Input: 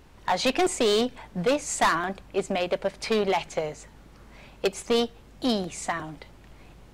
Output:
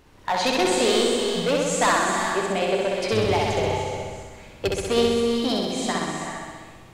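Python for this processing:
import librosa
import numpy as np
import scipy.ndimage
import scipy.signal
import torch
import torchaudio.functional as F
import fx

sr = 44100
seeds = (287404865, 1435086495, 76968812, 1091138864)

p1 = fx.octave_divider(x, sr, octaves=2, level_db=2.0, at=(3.12, 4.8))
p2 = fx.low_shelf(p1, sr, hz=160.0, db=-5.0)
p3 = p2 + fx.room_flutter(p2, sr, wall_m=11.0, rt60_s=1.4, dry=0)
y = fx.rev_gated(p3, sr, seeds[0], gate_ms=430, shape='rising', drr_db=4.5)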